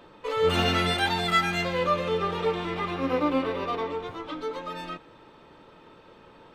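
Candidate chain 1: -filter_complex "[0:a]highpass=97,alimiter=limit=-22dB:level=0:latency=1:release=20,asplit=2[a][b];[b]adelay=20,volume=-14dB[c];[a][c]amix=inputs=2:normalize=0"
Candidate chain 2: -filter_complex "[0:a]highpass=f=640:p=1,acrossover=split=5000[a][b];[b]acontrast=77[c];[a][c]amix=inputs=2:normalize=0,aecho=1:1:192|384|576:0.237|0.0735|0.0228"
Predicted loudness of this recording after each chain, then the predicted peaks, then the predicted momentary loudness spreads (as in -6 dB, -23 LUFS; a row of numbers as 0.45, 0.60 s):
-30.5, -28.0 LUFS; -20.5, -11.0 dBFS; 7, 14 LU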